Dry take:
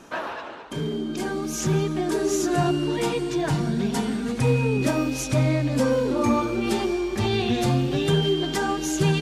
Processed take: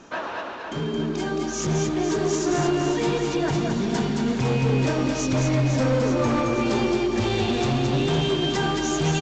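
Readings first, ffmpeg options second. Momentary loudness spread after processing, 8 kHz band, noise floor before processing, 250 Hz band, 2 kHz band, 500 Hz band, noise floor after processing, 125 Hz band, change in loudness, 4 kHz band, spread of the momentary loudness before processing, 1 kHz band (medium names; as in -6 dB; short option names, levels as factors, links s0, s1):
5 LU, +0.5 dB, -35 dBFS, +0.5 dB, +1.0 dB, +0.5 dB, -32 dBFS, 0.0 dB, +0.5 dB, +1.0 dB, 7 LU, +1.0 dB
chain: -af "aresample=16000,asoftclip=type=hard:threshold=0.0944,aresample=44100,aecho=1:1:220|506|877.8|1361|1989:0.631|0.398|0.251|0.158|0.1"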